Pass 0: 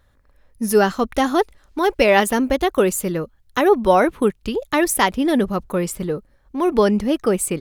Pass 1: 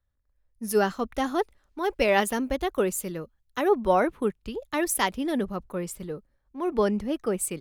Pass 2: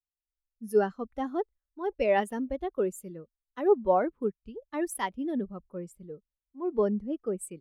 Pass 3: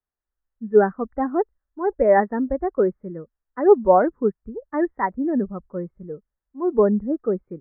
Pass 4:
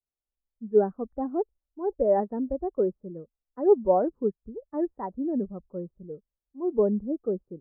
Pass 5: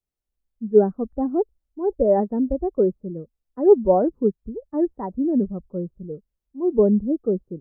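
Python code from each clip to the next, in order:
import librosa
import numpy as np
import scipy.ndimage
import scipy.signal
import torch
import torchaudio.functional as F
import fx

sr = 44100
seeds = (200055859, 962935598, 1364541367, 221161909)

y1 = fx.band_widen(x, sr, depth_pct=40)
y1 = y1 * librosa.db_to_amplitude(-8.5)
y2 = fx.spectral_expand(y1, sr, expansion=1.5)
y2 = y2 * librosa.db_to_amplitude(-3.5)
y3 = scipy.signal.sosfilt(scipy.signal.butter(12, 1900.0, 'lowpass', fs=sr, output='sos'), y2)
y3 = y3 * librosa.db_to_amplitude(9.0)
y4 = scipy.signal.sosfilt(scipy.signal.cheby1(2, 1.0, 620.0, 'lowpass', fs=sr, output='sos'), y3)
y4 = y4 * librosa.db_to_amplitude(-5.5)
y5 = fx.low_shelf(y4, sr, hz=460.0, db=10.5)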